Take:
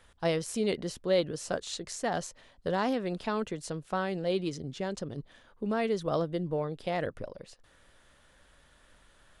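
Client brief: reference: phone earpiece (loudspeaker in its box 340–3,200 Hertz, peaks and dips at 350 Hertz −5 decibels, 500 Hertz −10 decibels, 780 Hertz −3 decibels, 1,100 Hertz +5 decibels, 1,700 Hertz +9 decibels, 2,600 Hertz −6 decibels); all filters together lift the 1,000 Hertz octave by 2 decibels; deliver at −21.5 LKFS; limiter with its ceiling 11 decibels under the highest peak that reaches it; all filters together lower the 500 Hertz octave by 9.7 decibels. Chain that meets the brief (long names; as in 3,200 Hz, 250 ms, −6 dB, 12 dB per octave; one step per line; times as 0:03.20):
parametric band 500 Hz −5 dB
parametric band 1,000 Hz +3.5 dB
brickwall limiter −28 dBFS
loudspeaker in its box 340–3,200 Hz, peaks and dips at 350 Hz −5 dB, 500 Hz −10 dB, 780 Hz −3 dB, 1,100 Hz +5 dB, 1,700 Hz +9 dB, 2,600 Hz −6 dB
level +20 dB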